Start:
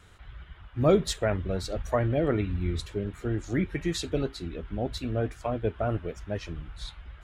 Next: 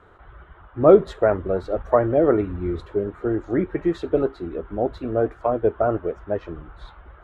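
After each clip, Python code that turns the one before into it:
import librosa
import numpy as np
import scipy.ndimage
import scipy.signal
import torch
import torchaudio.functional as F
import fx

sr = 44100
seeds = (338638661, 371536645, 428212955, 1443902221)

y = fx.curve_eq(x, sr, hz=(140.0, 250.0, 360.0, 1300.0, 2400.0, 3600.0, 5300.0, 11000.0), db=(0, 5, 12, 10, -5, -7, -16, -18))
y = y * 10.0 ** (-1.5 / 20.0)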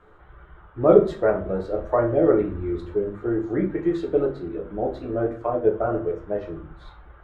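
y = fx.room_shoebox(x, sr, seeds[0], volume_m3=33.0, walls='mixed', distance_m=0.45)
y = y * 10.0 ** (-5.0 / 20.0)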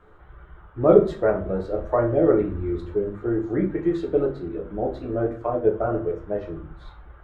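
y = fx.low_shelf(x, sr, hz=230.0, db=3.5)
y = y * 10.0 ** (-1.0 / 20.0)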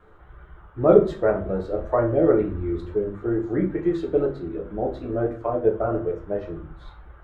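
y = fx.wow_flutter(x, sr, seeds[1], rate_hz=2.1, depth_cents=28.0)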